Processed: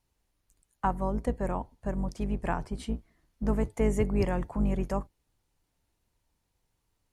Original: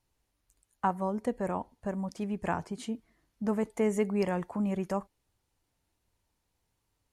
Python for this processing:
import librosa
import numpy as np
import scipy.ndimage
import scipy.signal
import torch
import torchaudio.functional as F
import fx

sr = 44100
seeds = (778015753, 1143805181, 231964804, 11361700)

y = fx.octave_divider(x, sr, octaves=2, level_db=2.0)
y = fx.notch(y, sr, hz=6700.0, q=6.8, at=(2.43, 2.94))